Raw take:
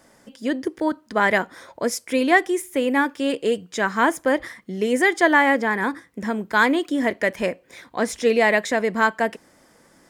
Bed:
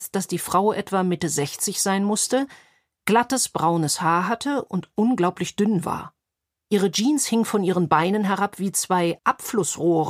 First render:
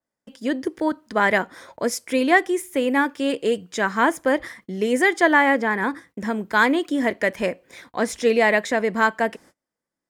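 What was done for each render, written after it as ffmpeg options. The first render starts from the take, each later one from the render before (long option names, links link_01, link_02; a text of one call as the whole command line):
ffmpeg -i in.wav -af "agate=range=-32dB:threshold=-47dB:ratio=16:detection=peak,adynamicequalizer=threshold=0.0282:dfrequency=3500:dqfactor=0.7:tfrequency=3500:tqfactor=0.7:attack=5:release=100:ratio=0.375:range=2:mode=cutabove:tftype=highshelf" out.wav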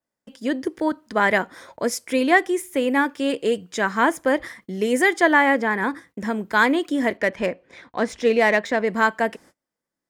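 ffmpeg -i in.wav -filter_complex "[0:a]asettb=1/sr,asplit=3[link_01][link_02][link_03];[link_01]atrim=end=4.644[link_04];[link_02]atrim=start=4.64:end=5.14,asetpts=PTS-STARTPTS,afade=type=in:duration=0.004:curve=qsin,afade=type=out:start_time=0.496:duration=0.004:curve=qsin,highshelf=frequency=8700:gain=5[link_05];[link_03]atrim=start=5.136[link_06];[link_04][link_05]acrossfade=duration=0.004:curve1=hsin:curve2=qsin[link_07];[link_07][link_06]acrossfade=duration=0.004:curve1=qsin:curve2=hsin,asettb=1/sr,asplit=3[link_08][link_09][link_10];[link_08]atrim=end=7.174[link_11];[link_09]atrim=start=7.17:end=8.87,asetpts=PTS-STARTPTS,afade=type=in:duration=0.004:curve=qsin,afade=type=out:start_time=1.696:duration=0.004:curve=qsin,adynamicsmooth=sensitivity=2.5:basefreq=4500[link_12];[link_10]atrim=start=8.866[link_13];[link_11][link_12]acrossfade=duration=0.004:curve1=hsin:curve2=qsin[link_14];[link_14][link_13]acrossfade=duration=0.004:curve1=qsin:curve2=hsin" out.wav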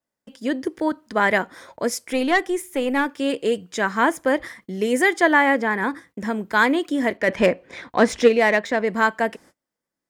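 ffmpeg -i in.wav -filter_complex "[0:a]asettb=1/sr,asplit=3[link_01][link_02][link_03];[link_01]atrim=end=2.024[link_04];[link_02]atrim=start=2.02:end=3.19,asetpts=PTS-STARTPTS,afade=type=in:duration=0.004:curve=qsin,afade=type=out:start_time=1.166:duration=0.004:curve=qsin,aeval=exprs='(tanh(3.16*val(0)+0.3)-tanh(0.3))/3.16':channel_layout=same[link_05];[link_03]atrim=start=3.186[link_06];[link_04][link_05]acrossfade=duration=0.004:curve1=hsin:curve2=qsin[link_07];[link_07][link_06]acrossfade=duration=0.004:curve1=qsin:curve2=hsin,asplit=3[link_08][link_09][link_10];[link_08]afade=type=out:start_time=7.27:duration=0.02[link_11];[link_09]acontrast=83,afade=type=in:start_time=7.27:duration=0.02,afade=type=out:start_time=8.27:duration=0.02[link_12];[link_10]afade=type=in:start_time=8.27:duration=0.02[link_13];[link_11][link_12][link_13]amix=inputs=3:normalize=0" out.wav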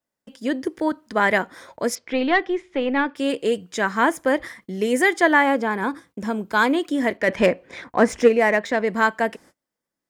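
ffmpeg -i in.wav -filter_complex "[0:a]asettb=1/sr,asplit=3[link_01][link_02][link_03];[link_01]atrim=end=1.954[link_04];[link_02]atrim=start=1.95:end=3.16,asetpts=PTS-STARTPTS,afade=type=in:duration=0.004:curve=qsin,afade=type=out:start_time=1.206:duration=0.004:curve=qsin,lowpass=frequency=4200:width=0.5412,lowpass=frequency=4200:width=1.3066[link_05];[link_03]atrim=start=3.156[link_06];[link_04][link_05]acrossfade=duration=0.004:curve1=hsin:curve2=qsin[link_07];[link_07][link_06]acrossfade=duration=0.004:curve1=qsin:curve2=hsin,asettb=1/sr,asplit=3[link_08][link_09][link_10];[link_08]atrim=end=5.434[link_11];[link_09]atrim=start=5.43:end=6.74,asetpts=PTS-STARTPTS,afade=type=in:duration=0.004:curve=qsin,afade=type=out:start_time=1.306:duration=0.004:curve=qsin,equalizer=frequency=1900:width=6.4:gain=-11.5[link_12];[link_10]atrim=start=6.736[link_13];[link_11][link_12]acrossfade=duration=0.004:curve1=hsin:curve2=qsin[link_14];[link_14][link_13]acrossfade=duration=0.004:curve1=qsin:curve2=hsin,asettb=1/sr,asplit=3[link_15][link_16][link_17];[link_15]atrim=end=7.844[link_18];[link_16]atrim=start=7.84:end=8.61,asetpts=PTS-STARTPTS,afade=type=in:duration=0.004:curve=qsin,afade=type=out:start_time=0.766:duration=0.004:curve=qsin,equalizer=frequency=3800:width=1.8:gain=-10.5[link_19];[link_17]atrim=start=8.606[link_20];[link_18][link_19]acrossfade=duration=0.004:curve1=hsin:curve2=qsin[link_21];[link_21][link_20]acrossfade=duration=0.004:curve1=qsin:curve2=hsin" out.wav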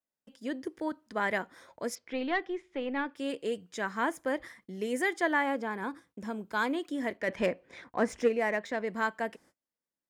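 ffmpeg -i in.wav -af "volume=-11.5dB" out.wav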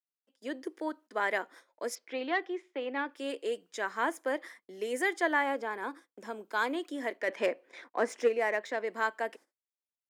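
ffmpeg -i in.wav -af "agate=range=-16dB:threshold=-51dB:ratio=16:detection=peak,highpass=frequency=300:width=0.5412,highpass=frequency=300:width=1.3066" out.wav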